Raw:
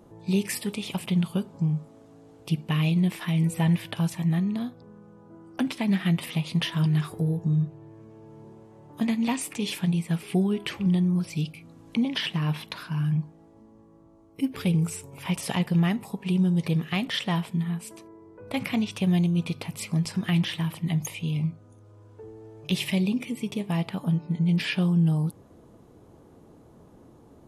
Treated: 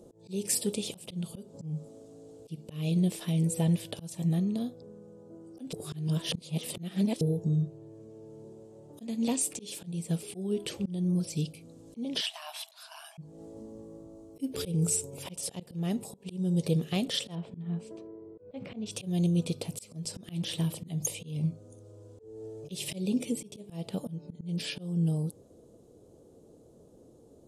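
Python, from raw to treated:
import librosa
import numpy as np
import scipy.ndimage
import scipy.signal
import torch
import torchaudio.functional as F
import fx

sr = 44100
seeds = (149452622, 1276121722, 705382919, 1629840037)

y = fx.brickwall_highpass(x, sr, low_hz=610.0, at=(12.21, 13.18))
y = fx.lowpass(y, sr, hz=2200.0, slope=12, at=(17.35, 18.86))
y = fx.edit(y, sr, fx.reverse_span(start_s=5.73, length_s=1.48), tone=tone)
y = fx.graphic_eq_10(y, sr, hz=(500, 1000, 2000, 4000, 8000), db=(10, -8, -10, 3, 10))
y = fx.rider(y, sr, range_db=10, speed_s=2.0)
y = fx.auto_swell(y, sr, attack_ms=251.0)
y = F.gain(torch.from_numpy(y), -3.5).numpy()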